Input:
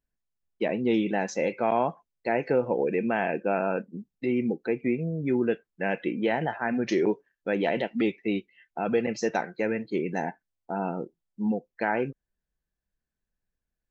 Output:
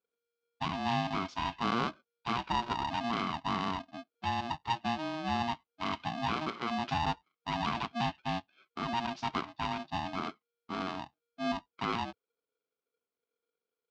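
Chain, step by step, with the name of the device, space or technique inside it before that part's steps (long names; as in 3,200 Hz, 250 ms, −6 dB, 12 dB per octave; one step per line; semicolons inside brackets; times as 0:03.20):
0:04.15–0:04.79: comb filter 2.3 ms, depth 63%
ring modulator pedal into a guitar cabinet (ring modulator with a square carrier 470 Hz; loudspeaker in its box 100–4,500 Hz, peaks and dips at 110 Hz −8 dB, 560 Hz −6 dB, 1,900 Hz −8 dB)
level −5 dB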